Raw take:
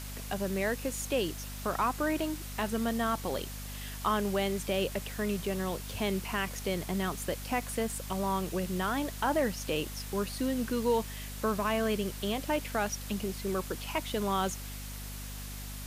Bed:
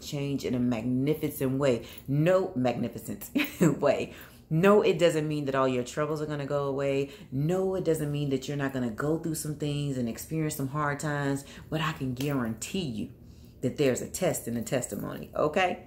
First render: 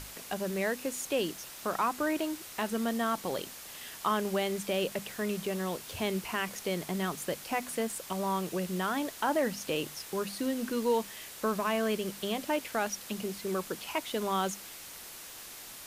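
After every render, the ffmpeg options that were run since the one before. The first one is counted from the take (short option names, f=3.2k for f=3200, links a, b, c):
-af "bandreject=f=50:t=h:w=6,bandreject=f=100:t=h:w=6,bandreject=f=150:t=h:w=6,bandreject=f=200:t=h:w=6,bandreject=f=250:t=h:w=6"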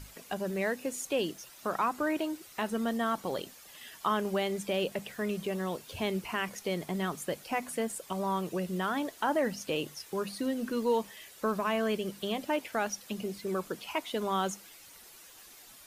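-af "afftdn=nr=10:nf=-47"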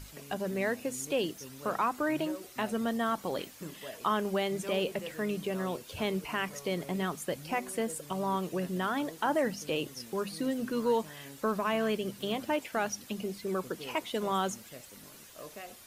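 -filter_complex "[1:a]volume=-20.5dB[a];[0:a][a]amix=inputs=2:normalize=0"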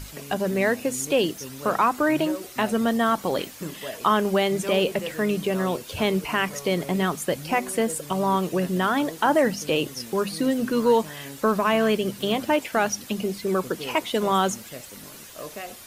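-af "volume=9dB"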